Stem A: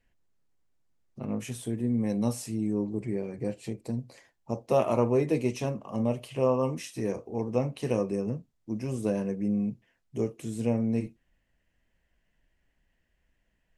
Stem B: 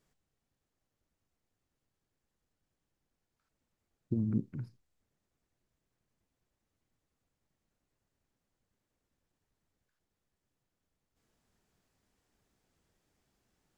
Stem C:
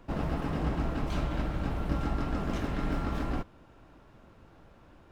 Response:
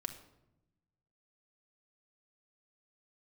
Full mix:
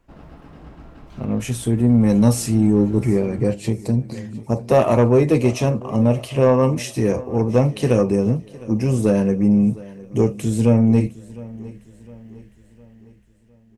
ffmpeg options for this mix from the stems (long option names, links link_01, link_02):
-filter_complex "[0:a]equalizer=frequency=63:width_type=o:width=1.4:gain=11,dynaudnorm=framelen=310:gausssize=9:maxgain=15dB,asoftclip=type=tanh:threshold=-6dB,volume=0.5dB,asplit=2[link_01][link_02];[link_02]volume=-20dB[link_03];[1:a]volume=-1dB[link_04];[2:a]volume=-11dB[link_05];[link_03]aecho=0:1:708|1416|2124|2832|3540|4248|4956:1|0.47|0.221|0.104|0.0488|0.0229|0.0108[link_06];[link_01][link_04][link_05][link_06]amix=inputs=4:normalize=0"